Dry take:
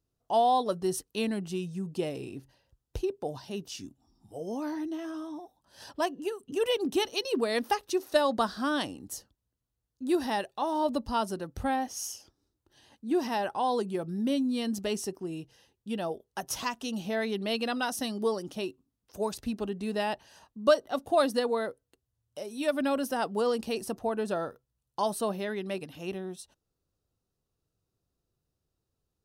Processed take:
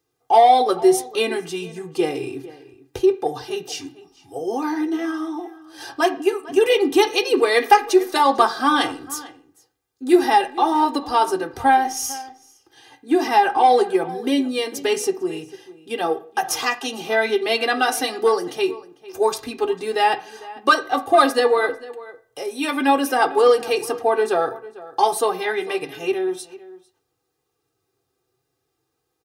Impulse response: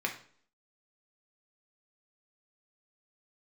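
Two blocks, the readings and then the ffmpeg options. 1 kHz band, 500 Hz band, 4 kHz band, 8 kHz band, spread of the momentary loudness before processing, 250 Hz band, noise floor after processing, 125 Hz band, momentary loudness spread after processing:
+14.0 dB, +11.0 dB, +10.0 dB, +10.0 dB, 14 LU, +8.0 dB, −75 dBFS, −1.5 dB, 16 LU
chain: -filter_complex "[0:a]highpass=99,aecho=1:1:2.5:1,acrossover=split=510[link_01][link_02];[link_02]acontrast=34[link_03];[link_01][link_03]amix=inputs=2:normalize=0,flanger=delay=6.3:depth=1.5:regen=-50:speed=0.55:shape=triangular,asoftclip=type=tanh:threshold=-11dB,asplit=2[link_04][link_05];[link_05]adelay=449,volume=-18dB,highshelf=frequency=4000:gain=-10.1[link_06];[link_04][link_06]amix=inputs=2:normalize=0,asplit=2[link_07][link_08];[1:a]atrim=start_sample=2205,highshelf=frequency=4300:gain=-11[link_09];[link_08][link_09]afir=irnorm=-1:irlink=0,volume=-5dB[link_10];[link_07][link_10]amix=inputs=2:normalize=0,volume=5dB"

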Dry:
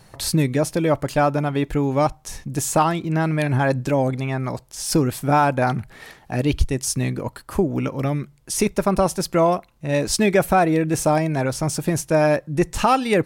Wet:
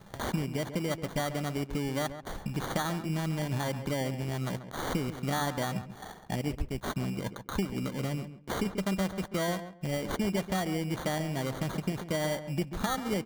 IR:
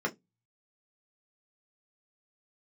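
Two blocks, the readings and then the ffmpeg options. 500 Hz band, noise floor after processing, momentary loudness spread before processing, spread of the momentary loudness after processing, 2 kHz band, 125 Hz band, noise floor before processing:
−14.0 dB, −50 dBFS, 8 LU, 5 LU, −10.5 dB, −10.5 dB, −52 dBFS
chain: -filter_complex "[0:a]equalizer=frequency=190:width=6.1:gain=10.5,acompressor=threshold=-33dB:ratio=3,acrusher=samples=17:mix=1:aa=0.000001,aeval=exprs='sgn(val(0))*max(abs(val(0))-0.002,0)':channel_layout=same,asplit=2[link_01][link_02];[link_02]adelay=137,lowpass=frequency=1900:poles=1,volume=-10.5dB,asplit=2[link_03][link_04];[link_04]adelay=137,lowpass=frequency=1900:poles=1,volume=0.2,asplit=2[link_05][link_06];[link_06]adelay=137,lowpass=frequency=1900:poles=1,volume=0.2[link_07];[link_03][link_05][link_07]amix=inputs=3:normalize=0[link_08];[link_01][link_08]amix=inputs=2:normalize=0"

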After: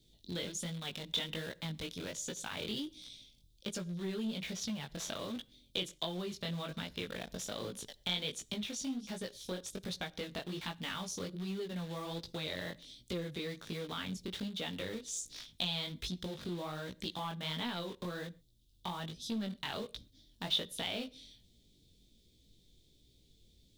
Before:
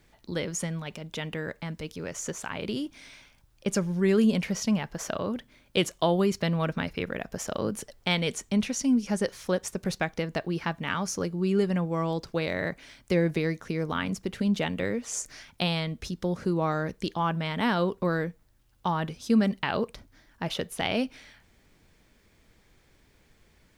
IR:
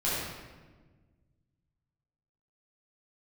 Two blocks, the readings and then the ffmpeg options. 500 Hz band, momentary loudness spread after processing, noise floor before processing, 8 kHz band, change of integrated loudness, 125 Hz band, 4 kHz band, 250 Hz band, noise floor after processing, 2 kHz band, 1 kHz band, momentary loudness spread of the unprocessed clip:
−13.5 dB, 7 LU, −63 dBFS, −7.0 dB, −10.5 dB, −12.5 dB, −2.0 dB, −13.5 dB, −68 dBFS, −11.0 dB, −13.0 dB, 10 LU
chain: -filter_complex "[0:a]acrossover=split=490|3500[link_01][link_02][link_03];[link_02]acrusher=bits=6:mix=0:aa=0.000001[link_04];[link_01][link_04][link_03]amix=inputs=3:normalize=0,acompressor=threshold=-32dB:ratio=5,flanger=delay=16.5:depth=6.5:speed=1.3,asoftclip=type=tanh:threshold=-29dB,equalizer=frequency=3600:width=2.7:gain=15,asplit=2[link_05][link_06];[1:a]atrim=start_sample=2205,atrim=end_sample=6174[link_07];[link_06][link_07]afir=irnorm=-1:irlink=0,volume=-29.5dB[link_08];[link_05][link_08]amix=inputs=2:normalize=0,volume=-1.5dB"

